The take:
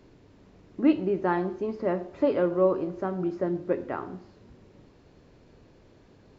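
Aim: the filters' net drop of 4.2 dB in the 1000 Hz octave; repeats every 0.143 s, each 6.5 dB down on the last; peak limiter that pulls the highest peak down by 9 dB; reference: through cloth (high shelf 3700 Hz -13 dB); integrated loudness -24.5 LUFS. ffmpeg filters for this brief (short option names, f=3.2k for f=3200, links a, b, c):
-af "equalizer=f=1k:t=o:g=-4.5,alimiter=limit=-20.5dB:level=0:latency=1,highshelf=f=3.7k:g=-13,aecho=1:1:143|286|429|572|715|858:0.473|0.222|0.105|0.0491|0.0231|0.0109,volume=6dB"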